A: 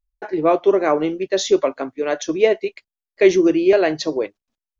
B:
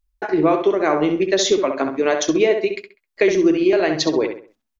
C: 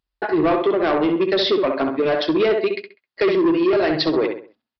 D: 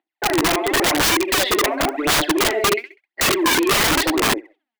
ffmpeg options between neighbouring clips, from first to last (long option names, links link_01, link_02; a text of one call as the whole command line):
ffmpeg -i in.wav -filter_complex "[0:a]equalizer=frequency=520:width_type=o:width=0.66:gain=-4.5,acompressor=threshold=-21dB:ratio=5,asplit=2[link_01][link_02];[link_02]adelay=66,lowpass=frequency=3000:poles=1,volume=-6dB,asplit=2[link_03][link_04];[link_04]adelay=66,lowpass=frequency=3000:poles=1,volume=0.35,asplit=2[link_05][link_06];[link_06]adelay=66,lowpass=frequency=3000:poles=1,volume=0.35,asplit=2[link_07][link_08];[link_08]adelay=66,lowpass=frequency=3000:poles=1,volume=0.35[link_09];[link_03][link_05][link_07][link_09]amix=inputs=4:normalize=0[link_10];[link_01][link_10]amix=inputs=2:normalize=0,volume=7dB" out.wav
ffmpeg -i in.wav -af "highpass=110,bandreject=frequency=2300:width=17,aresample=11025,asoftclip=type=tanh:threshold=-16dB,aresample=44100,volume=3dB" out.wav
ffmpeg -i in.wav -af "highpass=frequency=290:width=0.5412,highpass=frequency=290:width=1.3066,equalizer=frequency=320:width_type=q:width=4:gain=10,equalizer=frequency=470:width_type=q:width=4:gain=-7,equalizer=frequency=760:width_type=q:width=4:gain=9,equalizer=frequency=1200:width_type=q:width=4:gain=-6,equalizer=frequency=2000:width_type=q:width=4:gain=8,lowpass=frequency=3500:width=0.5412,lowpass=frequency=3500:width=1.3066,aphaser=in_gain=1:out_gain=1:delay=4.9:decay=0.75:speed=0.93:type=sinusoidal,aeval=exprs='(mod(2.99*val(0)+1,2)-1)/2.99':channel_layout=same,volume=-2.5dB" out.wav